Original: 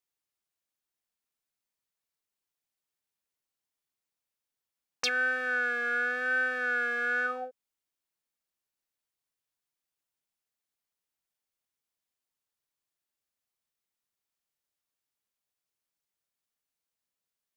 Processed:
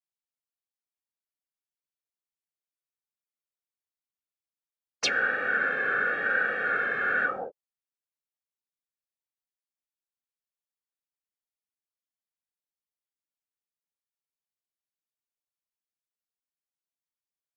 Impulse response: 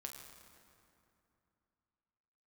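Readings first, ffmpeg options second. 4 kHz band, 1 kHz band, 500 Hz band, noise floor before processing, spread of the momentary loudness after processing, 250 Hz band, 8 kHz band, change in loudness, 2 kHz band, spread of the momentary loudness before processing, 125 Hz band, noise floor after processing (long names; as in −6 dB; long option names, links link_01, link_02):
+2.5 dB, +4.5 dB, +2.5 dB, below −85 dBFS, 5 LU, +2.5 dB, +3.0 dB, +2.5 dB, +2.0 dB, 5 LU, can't be measured, below −85 dBFS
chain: -af "afftdn=noise_reduction=15:noise_floor=-46,afftfilt=real='hypot(re,im)*cos(2*PI*random(0))':imag='hypot(re,im)*sin(2*PI*random(1))':win_size=512:overlap=0.75,volume=8.5dB"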